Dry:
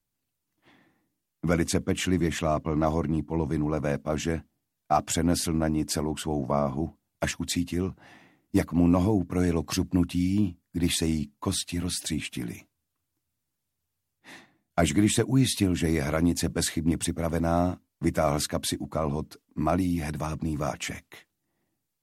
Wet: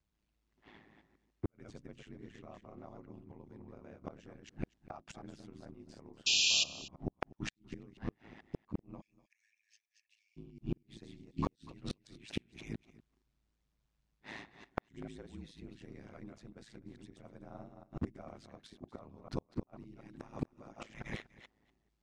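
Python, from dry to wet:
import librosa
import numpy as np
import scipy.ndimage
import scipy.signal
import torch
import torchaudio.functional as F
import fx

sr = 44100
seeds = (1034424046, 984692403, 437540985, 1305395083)

p1 = fx.reverse_delay(x, sr, ms=145, wet_db=-4.5)
p2 = fx.comb(p1, sr, ms=3.7, depth=0.67, at=(19.98, 20.92))
p3 = fx.gate_flip(p2, sr, shuts_db=-19.0, range_db=-27)
p4 = fx.cheby_ripple_highpass(p3, sr, hz=1700.0, ripple_db=9, at=(9.0, 10.36), fade=0.02)
p5 = p4 * np.sin(2.0 * np.pi * 54.0 * np.arange(len(p4)) / sr)
p6 = fx.gate_flip(p5, sr, shuts_db=-24.0, range_db=-37)
p7 = fx.spec_paint(p6, sr, seeds[0], shape='noise', start_s=6.26, length_s=0.38, low_hz=2400.0, high_hz=7500.0, level_db=-27.0)
p8 = fx.air_absorb(p7, sr, metres=120.0)
p9 = p8 + fx.echo_single(p8, sr, ms=244, db=-19.5, dry=0)
y = p9 * librosa.db_to_amplitude(3.0)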